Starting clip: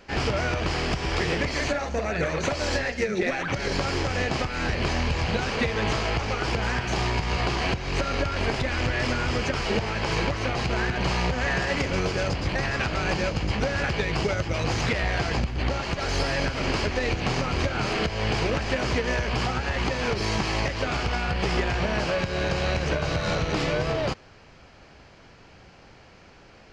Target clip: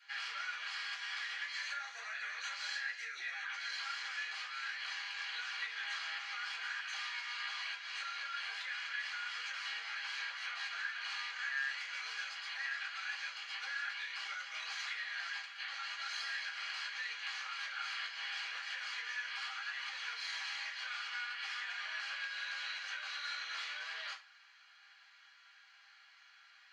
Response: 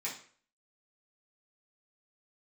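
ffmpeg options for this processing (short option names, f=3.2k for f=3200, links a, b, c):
-filter_complex "[0:a]highpass=f=1.4k:w=0.5412,highpass=f=1.4k:w=1.3066,highshelf=f=3k:g=-9.5,acompressor=threshold=-38dB:ratio=2.5[a];[1:a]atrim=start_sample=2205,asetrate=79380,aresample=44100[b];[a][b]afir=irnorm=-1:irlink=0,volume=2dB"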